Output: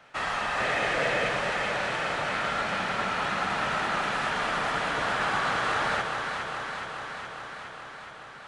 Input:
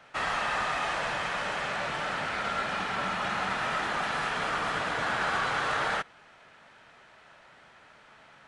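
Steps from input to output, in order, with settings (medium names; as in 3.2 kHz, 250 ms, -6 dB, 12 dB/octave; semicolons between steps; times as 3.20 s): 0.60–1.29 s: graphic EQ 125/250/500/1000/2000 Hz +4/+3/+12/-9/+7 dB; on a send: echo whose repeats swap between lows and highs 209 ms, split 900 Hz, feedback 85%, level -4 dB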